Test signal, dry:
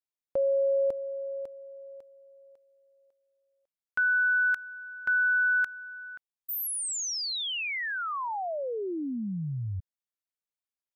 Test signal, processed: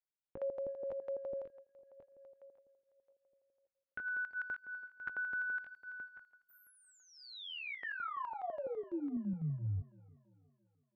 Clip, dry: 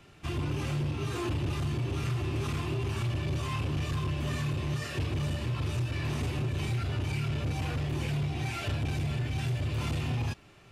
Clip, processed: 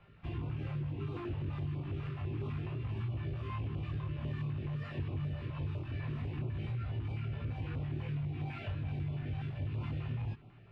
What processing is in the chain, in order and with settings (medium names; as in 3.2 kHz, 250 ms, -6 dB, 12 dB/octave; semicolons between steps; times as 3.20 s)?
chorus 0.28 Hz, delay 18 ms, depth 2.9 ms; compression, threshold -34 dBFS; distance through air 460 m; tape echo 334 ms, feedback 55%, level -20 dB, low-pass 3.8 kHz; step-sequenced notch 12 Hz 280–1700 Hz; trim +1 dB